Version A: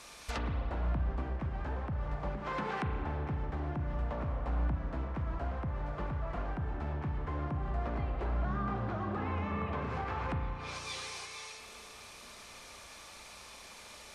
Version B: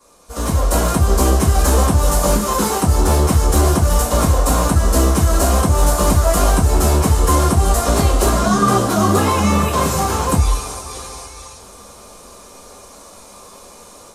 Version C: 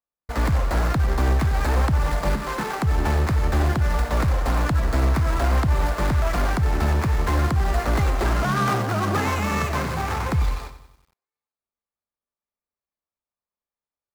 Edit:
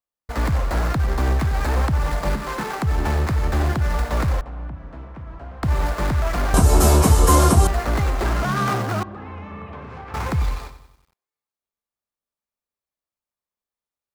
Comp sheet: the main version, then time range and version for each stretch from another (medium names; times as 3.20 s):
C
4.41–5.63 s: from A
6.54–7.67 s: from B
9.03–10.14 s: from A